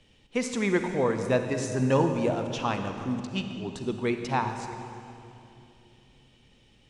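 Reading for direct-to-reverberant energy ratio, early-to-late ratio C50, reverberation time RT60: 6.0 dB, 6.5 dB, 2.9 s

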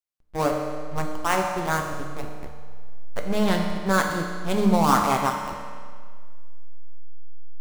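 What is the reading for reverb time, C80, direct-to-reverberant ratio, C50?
1.8 s, 5.0 dB, 1.5 dB, 3.5 dB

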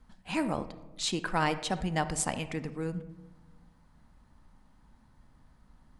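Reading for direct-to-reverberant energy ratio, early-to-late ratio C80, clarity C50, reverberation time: 11.0 dB, 16.0 dB, 13.5 dB, 1.2 s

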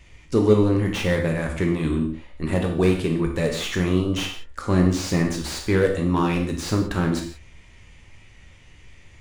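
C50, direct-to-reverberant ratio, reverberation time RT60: 6.5 dB, 1.5 dB, non-exponential decay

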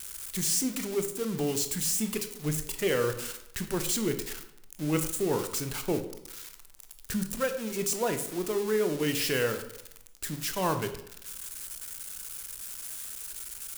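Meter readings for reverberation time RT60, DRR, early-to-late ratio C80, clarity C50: 0.75 s, 7.5 dB, 13.0 dB, 10.5 dB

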